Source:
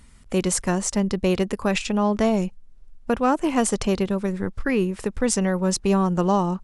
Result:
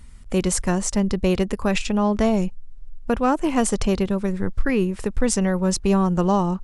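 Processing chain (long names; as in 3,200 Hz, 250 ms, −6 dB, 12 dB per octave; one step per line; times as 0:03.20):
low-shelf EQ 82 Hz +10.5 dB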